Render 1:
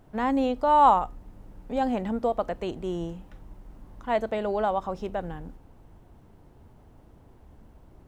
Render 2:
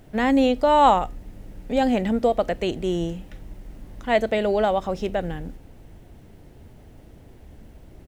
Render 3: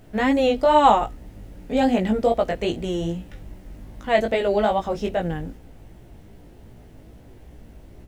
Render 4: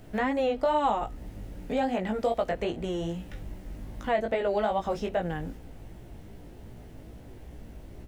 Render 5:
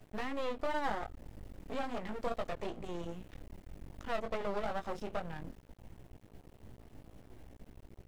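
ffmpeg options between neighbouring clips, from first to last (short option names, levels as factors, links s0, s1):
-af "firequalizer=gain_entry='entry(610,0);entry(1000,-8);entry(1900,4)':delay=0.05:min_phase=1,volume=2.11"
-af "flanger=delay=16.5:depth=3.1:speed=2.5,volume=1.58"
-filter_complex "[0:a]acrossover=split=630|1900[s0][s1][s2];[s0]acompressor=threshold=0.0282:ratio=4[s3];[s1]acompressor=threshold=0.0398:ratio=4[s4];[s2]acompressor=threshold=0.00447:ratio=4[s5];[s3][s4][s5]amix=inputs=3:normalize=0"
-af "aeval=exprs='max(val(0),0)':c=same,volume=0.531"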